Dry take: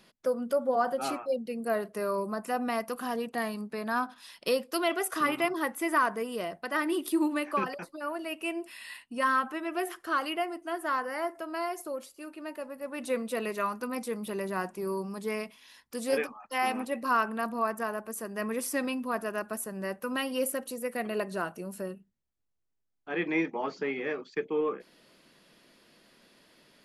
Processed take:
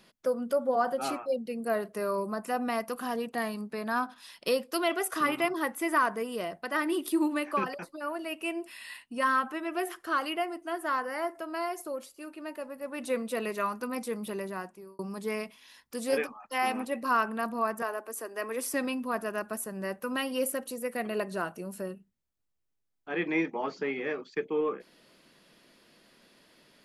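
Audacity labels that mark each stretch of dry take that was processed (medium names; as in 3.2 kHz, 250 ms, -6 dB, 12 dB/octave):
14.260000	14.990000	fade out
17.820000	18.740000	steep high-pass 260 Hz 48 dB/octave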